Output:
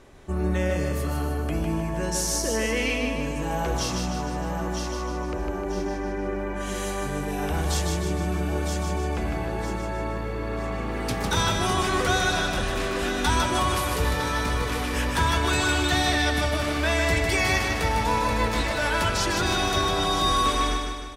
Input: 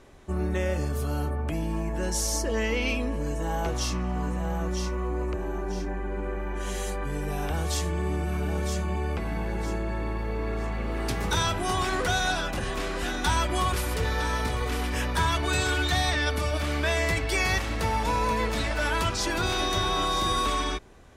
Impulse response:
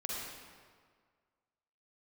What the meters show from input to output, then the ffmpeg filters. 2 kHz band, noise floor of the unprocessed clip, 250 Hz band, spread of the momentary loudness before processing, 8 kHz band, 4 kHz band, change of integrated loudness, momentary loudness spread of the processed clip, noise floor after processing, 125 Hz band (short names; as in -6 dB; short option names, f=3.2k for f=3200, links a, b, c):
+3.0 dB, -31 dBFS, +3.5 dB, 7 LU, +3.0 dB, +3.0 dB, +2.5 dB, 8 LU, -30 dBFS, +1.5 dB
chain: -af "aecho=1:1:153|306|459|612|765|918|1071:0.596|0.316|0.167|0.0887|0.047|0.0249|0.0132,volume=1.5dB"